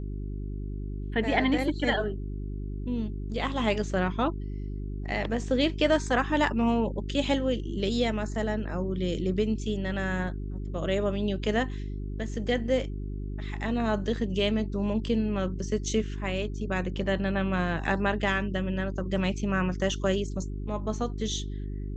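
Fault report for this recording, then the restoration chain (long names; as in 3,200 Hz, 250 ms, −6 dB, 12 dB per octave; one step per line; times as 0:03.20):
mains hum 50 Hz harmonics 8 −34 dBFS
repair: hum removal 50 Hz, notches 8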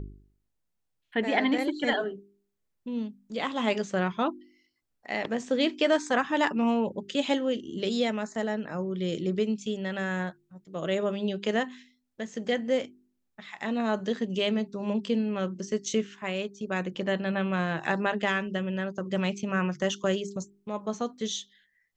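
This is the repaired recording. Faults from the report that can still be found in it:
none of them is left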